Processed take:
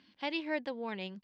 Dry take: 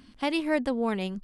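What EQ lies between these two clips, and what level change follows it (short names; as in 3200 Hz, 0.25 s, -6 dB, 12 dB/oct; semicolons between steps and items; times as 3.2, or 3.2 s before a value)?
speaker cabinet 170–4900 Hz, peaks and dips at 250 Hz -8 dB, 430 Hz -6 dB, 700 Hz -6 dB, 1300 Hz -4 dB; low shelf 240 Hz -6 dB; bell 1200 Hz -5 dB 0.4 oct; -4.0 dB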